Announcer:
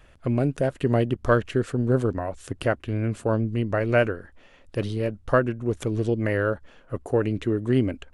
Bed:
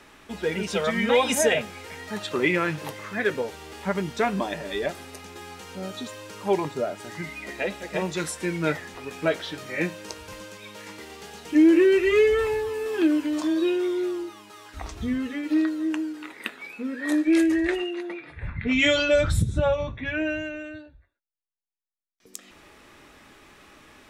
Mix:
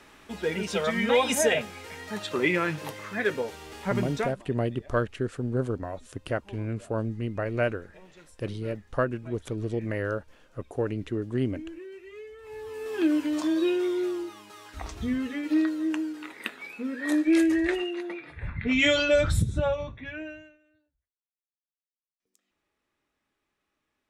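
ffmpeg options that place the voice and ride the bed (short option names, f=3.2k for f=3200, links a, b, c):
-filter_complex "[0:a]adelay=3650,volume=-6dB[a];[1:a]volume=21.5dB,afade=t=out:st=4.14:d=0.22:silence=0.0707946,afade=t=in:st=12.42:d=0.76:silence=0.0668344,afade=t=out:st=19.38:d=1.2:silence=0.0421697[b];[a][b]amix=inputs=2:normalize=0"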